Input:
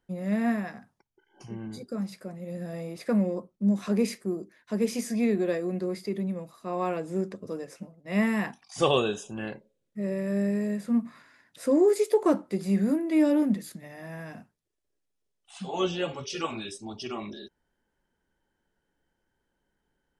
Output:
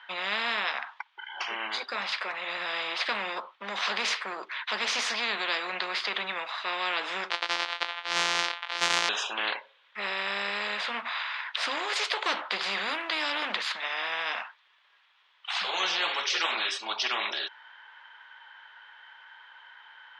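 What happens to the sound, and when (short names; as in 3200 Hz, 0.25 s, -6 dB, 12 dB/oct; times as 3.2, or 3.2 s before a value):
7.3–9.09 sample sorter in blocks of 256 samples
whole clip: Chebyshev band-pass 960–3500 Hz, order 3; spectral compressor 4:1; gain +5 dB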